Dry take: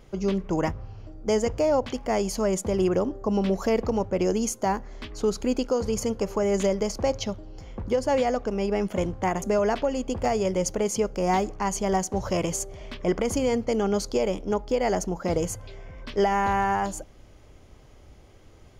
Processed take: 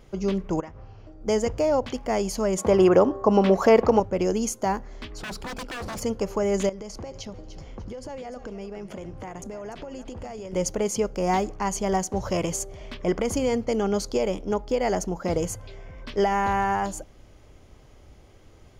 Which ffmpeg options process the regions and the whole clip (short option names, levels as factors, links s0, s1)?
-filter_complex "[0:a]asettb=1/sr,asplit=3[s0][s1][s2];[s0]atrim=end=0.604[s3];[s1]atrim=start=0.6:end=1.21,asetpts=PTS-STARTPTS,afade=t=in:d=0.004:c=qsin,afade=t=out:st=0.606:d=0.004:c=qsin,bass=f=250:g=-5,treble=f=4000:g=-10,acompressor=threshold=0.0141:ratio=5:attack=3.2:release=140:knee=1:detection=peak,lowpass=f=6800:t=q:w=1.9[s4];[s2]atrim=start=1.206[s5];[s3][s4]acrossfade=d=0.004:c1=hsin:c2=qsin[s6];[s6][s5]acrossfade=d=0.004:c1=qsin:c2=hsin,asettb=1/sr,asplit=3[s7][s8][s9];[s7]atrim=end=2.584[s10];[s8]atrim=start=2.58:end=4,asetpts=PTS-STARTPTS,afade=t=in:d=0.004:c=qsin,afade=t=out:st=1.416:d=0.004:c=qsin,highpass=44,equalizer=f=950:w=0.34:g=10,aeval=exprs='val(0)+0.00562*sin(2*PI*1100*n/s)':c=same[s11];[s9]atrim=start=3.996[s12];[s10][s11]acrossfade=d=0.004:c1=hsin:c2=qsin[s13];[s13][s12]acrossfade=d=0.004:c1=qsin:c2=hsin,asettb=1/sr,asplit=3[s14][s15][s16];[s14]atrim=end=5.184[s17];[s15]atrim=start=5.18:end=6.02,asetpts=PTS-STARTPTS,afade=t=in:d=0.004:c=qsin,afade=t=out:st=0.836:d=0.004:c=qsin,bandreject=f=6500:w=5.6,aeval=exprs='0.0376*(abs(mod(val(0)/0.0376+3,4)-2)-1)':c=same[s18];[s16]atrim=start=6.016[s19];[s17][s18]acrossfade=d=0.004:c1=hsin:c2=qsin[s20];[s20][s19]acrossfade=d=0.004:c1=qsin:c2=hsin,asettb=1/sr,asplit=3[s21][s22][s23];[s21]atrim=end=6.694[s24];[s22]atrim=start=6.69:end=10.53,asetpts=PTS-STARTPTS,afade=t=in:d=0.004:c=qsin,afade=t=out:st=3.836:d=0.004:c=qsin,lowpass=11000,acompressor=threshold=0.0224:ratio=16:attack=3.2:release=140:knee=1:detection=peak,asplit=4[s25][s26][s27][s28];[s26]adelay=297,afreqshift=-45,volume=0.251[s29];[s27]adelay=594,afreqshift=-90,volume=0.0804[s30];[s28]adelay=891,afreqshift=-135,volume=0.0257[s31];[s25][s29][s30][s31]amix=inputs=4:normalize=0,atrim=end_sample=169344[s32];[s23]atrim=start=10.526[s33];[s24][s32]acrossfade=d=0.004:c1=hsin:c2=qsin[s34];[s34][s33]acrossfade=d=0.004:c1=qsin:c2=hsin"